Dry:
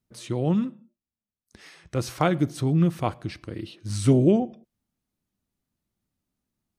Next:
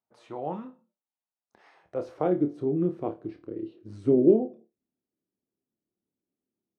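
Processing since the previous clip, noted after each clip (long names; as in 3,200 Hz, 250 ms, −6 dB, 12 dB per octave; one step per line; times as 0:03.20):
band-pass filter sweep 820 Hz → 380 Hz, 0:01.73–0:02.35
flutter between parallel walls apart 4.7 metres, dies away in 0.21 s
level +2.5 dB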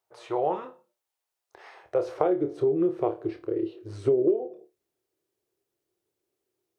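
drawn EQ curve 130 Hz 0 dB, 230 Hz −18 dB, 370 Hz +7 dB, 620 Hz +5 dB
downward compressor 6 to 1, threshold −25 dBFS, peak gain reduction 16.5 dB
level +4.5 dB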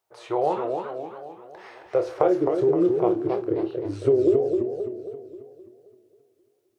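feedback echo with a swinging delay time 265 ms, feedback 51%, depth 192 cents, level −5 dB
level +3 dB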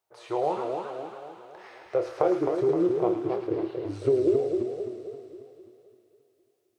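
delay with a high-pass on its return 109 ms, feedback 78%, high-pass 1,500 Hz, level −4.5 dB
level −3.5 dB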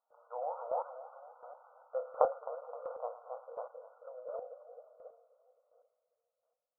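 linear-phase brick-wall band-pass 470–1,500 Hz
square-wave tremolo 1.4 Hz, depth 65%, duty 15%
level −1 dB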